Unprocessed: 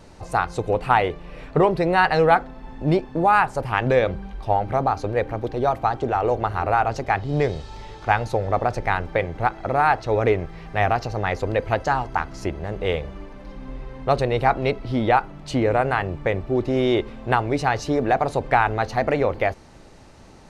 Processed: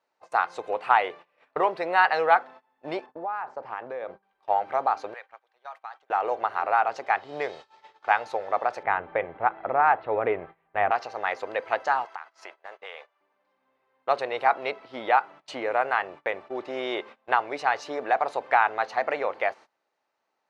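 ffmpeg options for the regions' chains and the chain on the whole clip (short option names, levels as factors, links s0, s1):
-filter_complex "[0:a]asettb=1/sr,asplit=3[s0][s1][s2];[s0]atrim=end=3.064[s3];[s1]atrim=start=3.06:end=4.23,asetpts=PTS-STARTPTS,afade=t=in:d=0.004:c=qsin,afade=t=out:st=1.166:d=0.004:c=qsin,lowpass=f=5300:w=0.5412,lowpass=f=5300:w=1.3066,acompressor=threshold=0.1:ratio=12:attack=3.2:release=140:knee=1:detection=peak,equalizer=f=3200:w=0.57:g=-12.5[s4];[s2]atrim=start=4.226[s5];[s3][s4]acrossfade=d=0.004:c1=hsin:c2=qsin[s6];[s6][s5]acrossfade=d=0.004:c1=qsin:c2=hsin,asettb=1/sr,asplit=3[s7][s8][s9];[s7]atrim=end=5.144[s10];[s8]atrim=start=5.14:end=6.1,asetpts=PTS-STARTPTS,afade=t=in:d=0.004:c=qsin,afade=t=out:st=0.956:d=0.004:c=qsin,highpass=1100,acompressor=threshold=0.0141:ratio=2.5:attack=3.2:release=140:knee=1:detection=peak[s11];[s9]atrim=start=6.096[s12];[s10][s11]acrossfade=d=0.004:c1=hsin:c2=qsin[s13];[s13][s12]acrossfade=d=0.004:c1=qsin:c2=hsin,asettb=1/sr,asplit=3[s14][s15][s16];[s14]atrim=end=8.834[s17];[s15]atrim=start=8.83:end=10.91,asetpts=PTS-STARTPTS,afade=t=in:d=0.004:c=qsin,afade=t=out:st=2.076:d=0.004:c=qsin,lowpass=f=3500:w=0.5412,lowpass=f=3500:w=1.3066,aemphasis=mode=reproduction:type=riaa[s18];[s16]atrim=start=10.906[s19];[s17][s18]acrossfade=d=0.004:c1=hsin:c2=qsin[s20];[s20][s19]acrossfade=d=0.004:c1=qsin:c2=hsin,asettb=1/sr,asplit=3[s21][s22][s23];[s21]atrim=end=12.054[s24];[s22]atrim=start=12.05:end=13.21,asetpts=PTS-STARTPTS,afade=t=in:d=0.004:c=qsin,afade=t=out:st=1.156:d=0.004:c=qsin,highpass=690,acompressor=threshold=0.0316:ratio=10:attack=3.2:release=140:knee=1:detection=peak[s25];[s23]atrim=start=13.206[s26];[s24][s25]acrossfade=d=0.004:c1=hsin:c2=qsin[s27];[s27][s26]acrossfade=d=0.004:c1=qsin:c2=hsin,highpass=770,agate=range=0.0708:threshold=0.00794:ratio=16:detection=peak,aemphasis=mode=reproduction:type=75fm"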